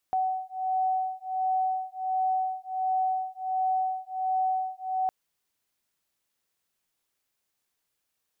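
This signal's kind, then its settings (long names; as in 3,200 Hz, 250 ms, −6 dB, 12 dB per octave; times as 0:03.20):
two tones that beat 751 Hz, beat 1.4 Hz, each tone −28.5 dBFS 4.96 s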